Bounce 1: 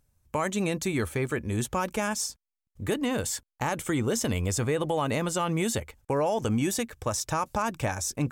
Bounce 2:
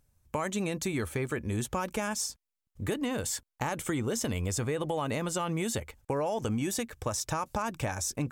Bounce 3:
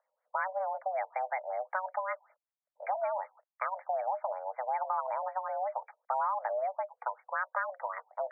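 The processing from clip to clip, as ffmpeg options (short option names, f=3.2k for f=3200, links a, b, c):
-af "acompressor=threshold=-29dB:ratio=2.5"
-af "highpass=f=200:t=q:w=0.5412,highpass=f=200:t=q:w=1.307,lowpass=f=3.5k:t=q:w=0.5176,lowpass=f=3.5k:t=q:w=0.7071,lowpass=f=3.5k:t=q:w=1.932,afreqshift=380,afftfilt=real='re*lt(b*sr/1024,1000*pow(2400/1000,0.5+0.5*sin(2*PI*5.3*pts/sr)))':imag='im*lt(b*sr/1024,1000*pow(2400/1000,0.5+0.5*sin(2*PI*5.3*pts/sr)))':win_size=1024:overlap=0.75"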